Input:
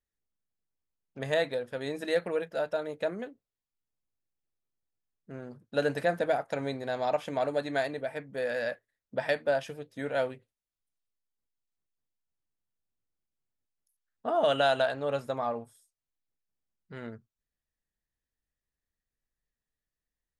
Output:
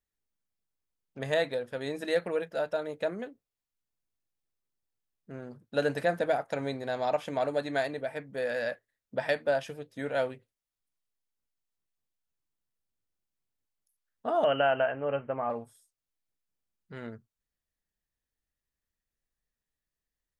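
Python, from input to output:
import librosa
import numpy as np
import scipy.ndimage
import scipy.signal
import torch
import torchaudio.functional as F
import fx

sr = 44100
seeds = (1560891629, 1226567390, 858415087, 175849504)

y = fx.cheby1_lowpass(x, sr, hz=3100.0, order=10, at=(14.44, 15.5))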